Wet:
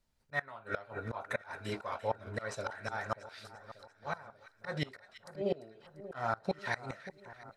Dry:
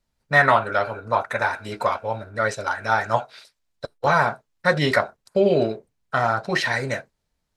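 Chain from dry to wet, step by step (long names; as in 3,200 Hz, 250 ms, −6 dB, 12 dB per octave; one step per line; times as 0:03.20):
volume swells 398 ms
gate with flip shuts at −17 dBFS, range −24 dB
echo with a time of its own for lows and highs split 1,500 Hz, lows 586 ms, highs 344 ms, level −14 dB
level −3 dB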